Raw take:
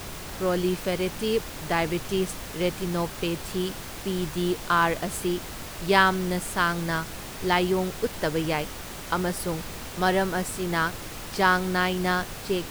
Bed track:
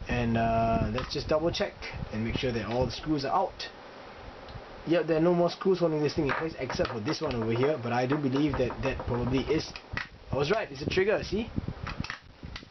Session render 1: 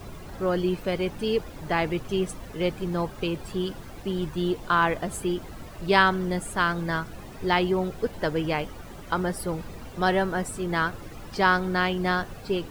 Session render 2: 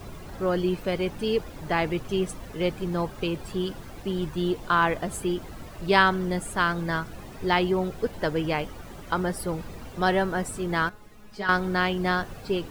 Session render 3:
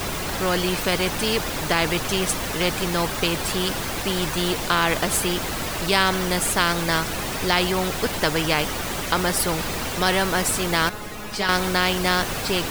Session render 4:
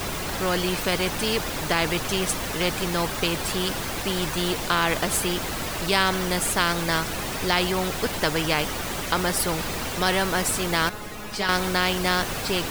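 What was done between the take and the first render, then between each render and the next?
noise reduction 13 dB, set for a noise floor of -38 dBFS
10.89–11.49 s: feedback comb 210 Hz, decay 0.17 s, mix 90%
in parallel at 0 dB: peak limiter -16 dBFS, peak gain reduction 11.5 dB; on the sum: spectrum-flattening compressor 2:1
trim -2 dB

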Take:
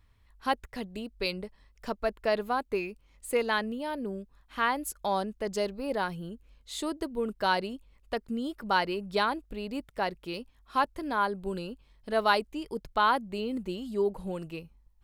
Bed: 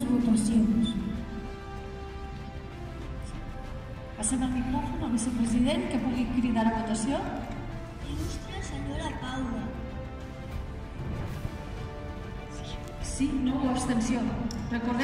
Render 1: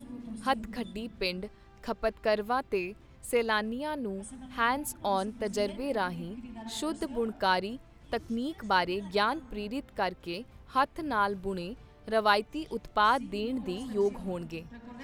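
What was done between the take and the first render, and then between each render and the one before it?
add bed -17.5 dB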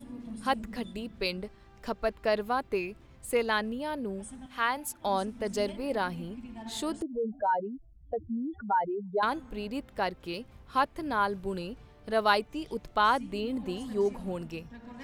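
4.46–5.05 s: bass shelf 380 Hz -10.5 dB; 7.02–9.23 s: spectral contrast enhancement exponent 3.1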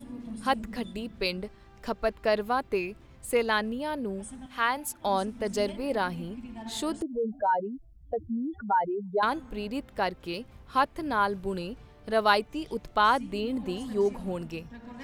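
trim +2 dB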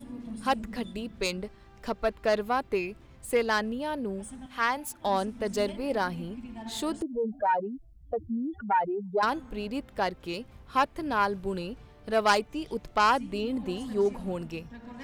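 self-modulated delay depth 0.098 ms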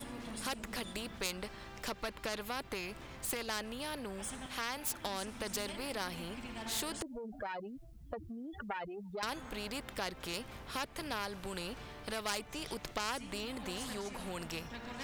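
compression 2.5:1, threshold -32 dBFS, peak gain reduction 10 dB; spectrum-flattening compressor 2:1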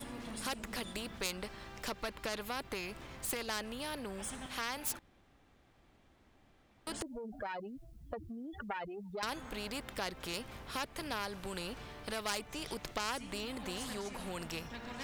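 4.99–6.87 s: room tone

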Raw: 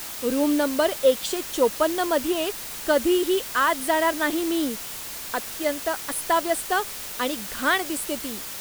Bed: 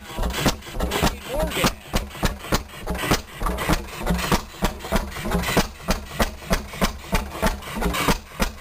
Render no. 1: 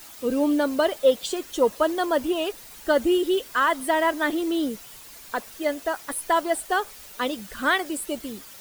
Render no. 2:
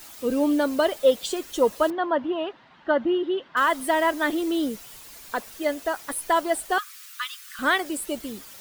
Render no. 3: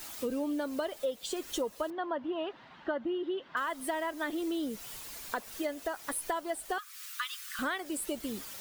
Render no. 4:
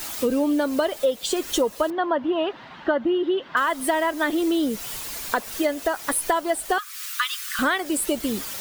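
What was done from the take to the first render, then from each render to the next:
noise reduction 11 dB, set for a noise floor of -35 dBFS
1.90–3.57 s: cabinet simulation 140–2900 Hz, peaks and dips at 170 Hz +5 dB, 450 Hz -10 dB, 980 Hz +3 dB, 2.4 kHz -8 dB; 6.78–7.59 s: steep high-pass 1.1 kHz 96 dB/octave
compression 5:1, threshold -32 dBFS, peak gain reduction 16.5 dB
trim +11.5 dB

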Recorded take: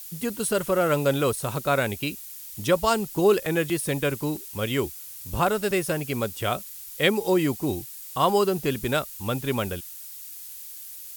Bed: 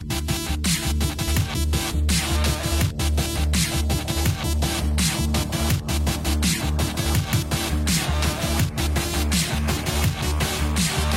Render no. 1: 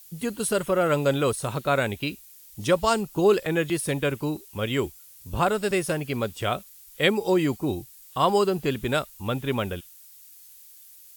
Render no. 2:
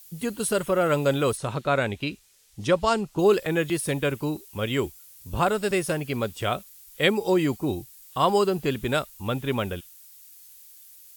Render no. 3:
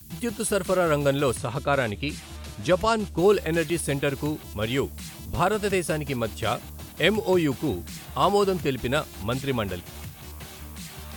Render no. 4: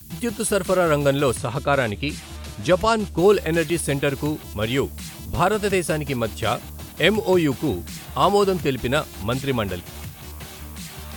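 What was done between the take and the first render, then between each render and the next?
noise print and reduce 9 dB
1.37–3.19 s: distance through air 52 m
add bed -18 dB
trim +3.5 dB

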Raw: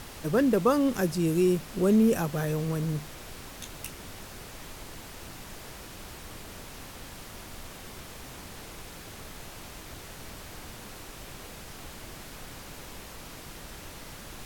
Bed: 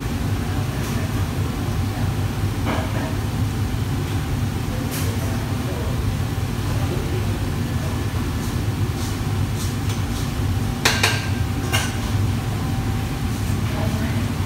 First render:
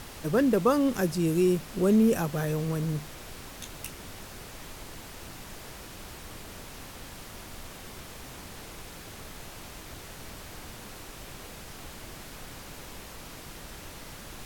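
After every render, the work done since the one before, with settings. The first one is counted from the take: no audible change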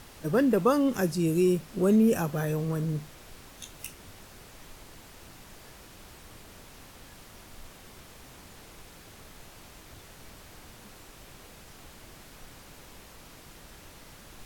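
noise print and reduce 6 dB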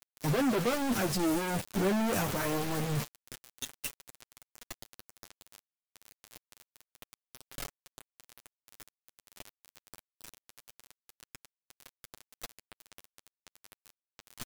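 companded quantiser 2-bit; flange 0.26 Hz, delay 7 ms, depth 3.5 ms, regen +1%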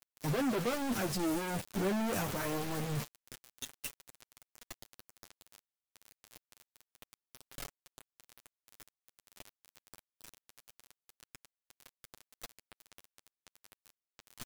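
trim -4 dB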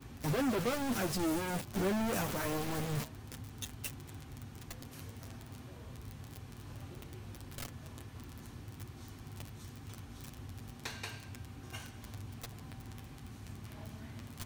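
add bed -25.5 dB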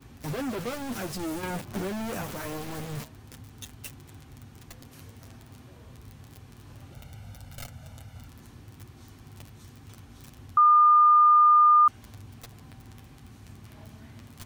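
1.43–2.23 s: three bands compressed up and down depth 100%; 6.92–8.28 s: comb 1.4 ms, depth 77%; 10.57–11.88 s: bleep 1.21 kHz -14 dBFS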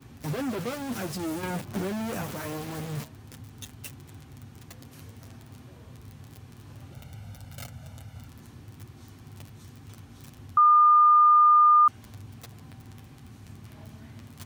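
high-pass 97 Hz 12 dB/octave; bass shelf 130 Hz +7.5 dB

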